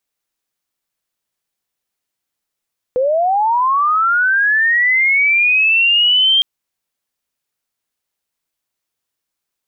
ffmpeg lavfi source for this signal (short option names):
-f lavfi -i "aevalsrc='pow(10,(-12+3*t/3.46)/20)*sin(2*PI*(490*t+2710*t*t/(2*3.46)))':d=3.46:s=44100"